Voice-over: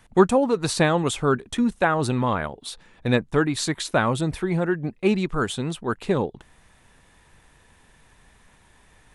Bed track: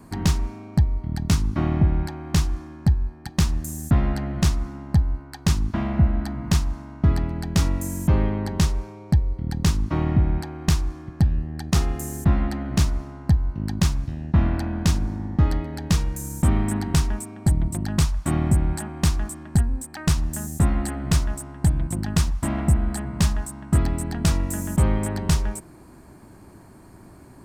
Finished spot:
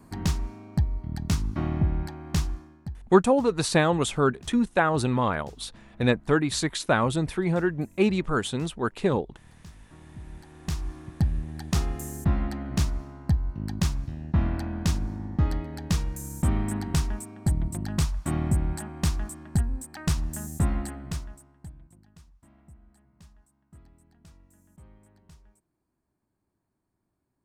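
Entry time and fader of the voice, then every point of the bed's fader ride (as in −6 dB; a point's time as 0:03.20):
2.95 s, −1.5 dB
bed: 0:02.50 −5.5 dB
0:03.19 −27.5 dB
0:10.05 −27.5 dB
0:10.93 −5 dB
0:20.76 −5 dB
0:22.12 −33 dB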